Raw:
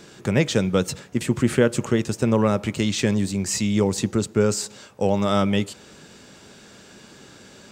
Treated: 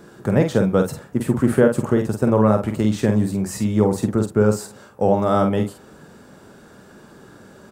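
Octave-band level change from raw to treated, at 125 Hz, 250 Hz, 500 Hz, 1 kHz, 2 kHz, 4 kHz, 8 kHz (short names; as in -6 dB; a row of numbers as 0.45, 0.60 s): +3.0, +3.0, +4.0, +4.5, -2.0, -9.0, -6.5 dB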